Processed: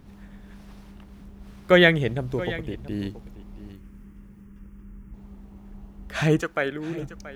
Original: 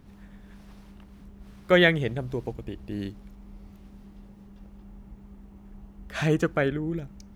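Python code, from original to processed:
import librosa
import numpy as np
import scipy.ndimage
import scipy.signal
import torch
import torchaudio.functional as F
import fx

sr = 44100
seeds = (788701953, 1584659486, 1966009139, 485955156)

y = fx.fixed_phaser(x, sr, hz=1700.0, stages=4, at=(3.73, 5.14))
y = fx.highpass(y, sr, hz=fx.line((6.4, 1100.0), (6.99, 300.0)), slope=6, at=(6.4, 6.99), fade=0.02)
y = y + 10.0 ** (-16.0 / 20.0) * np.pad(y, (int(679 * sr / 1000.0), 0))[:len(y)]
y = y * 10.0 ** (3.0 / 20.0)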